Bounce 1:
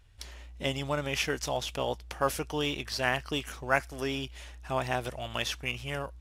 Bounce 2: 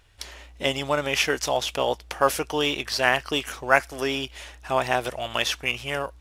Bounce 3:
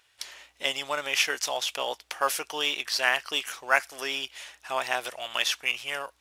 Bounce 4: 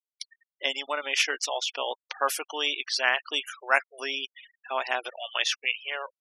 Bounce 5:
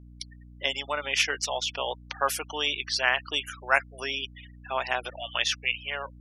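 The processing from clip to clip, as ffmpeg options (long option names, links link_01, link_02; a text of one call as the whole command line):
ffmpeg -i in.wav -af "bass=frequency=250:gain=-9,treble=frequency=4000:gain=-1,volume=8dB" out.wav
ffmpeg -i in.wav -af "highpass=frequency=1400:poles=1" out.wav
ffmpeg -i in.wav -af "afftfilt=real='re*gte(hypot(re,im),0.0224)':imag='im*gte(hypot(re,im),0.0224)':win_size=1024:overlap=0.75" out.wav
ffmpeg -i in.wav -af "aeval=exprs='val(0)+0.00447*(sin(2*PI*60*n/s)+sin(2*PI*2*60*n/s)/2+sin(2*PI*3*60*n/s)/3+sin(2*PI*4*60*n/s)/4+sin(2*PI*5*60*n/s)/5)':channel_layout=same" out.wav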